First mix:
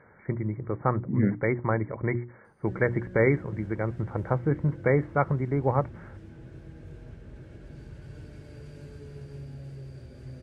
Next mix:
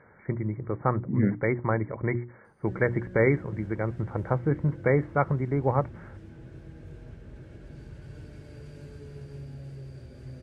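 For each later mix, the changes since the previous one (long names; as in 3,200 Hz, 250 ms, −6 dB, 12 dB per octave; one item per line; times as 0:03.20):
nothing changed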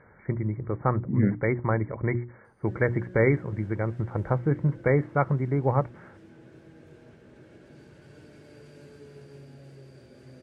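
background: add high-pass filter 230 Hz 12 dB per octave
master: add low-shelf EQ 68 Hz +8 dB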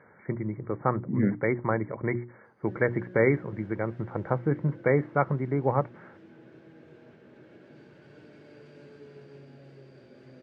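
master: add band-pass filter 150–4,100 Hz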